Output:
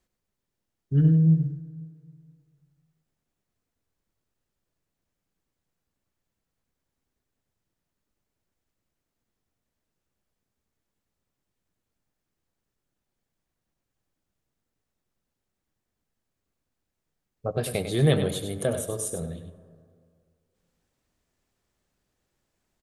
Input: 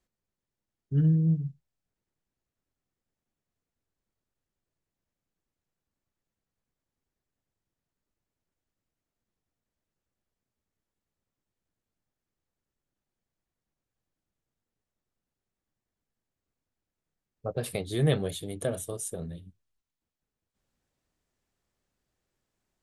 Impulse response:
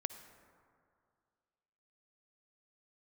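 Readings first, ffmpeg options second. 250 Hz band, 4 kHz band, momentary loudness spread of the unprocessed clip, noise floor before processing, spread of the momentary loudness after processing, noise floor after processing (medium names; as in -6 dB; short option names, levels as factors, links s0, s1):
+4.5 dB, +4.5 dB, 16 LU, under -85 dBFS, 19 LU, -84 dBFS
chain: -filter_complex "[0:a]aecho=1:1:99:0.355,asplit=2[s0][s1];[1:a]atrim=start_sample=2205[s2];[s1][s2]afir=irnorm=-1:irlink=0,volume=1.26[s3];[s0][s3]amix=inputs=2:normalize=0,volume=0.75"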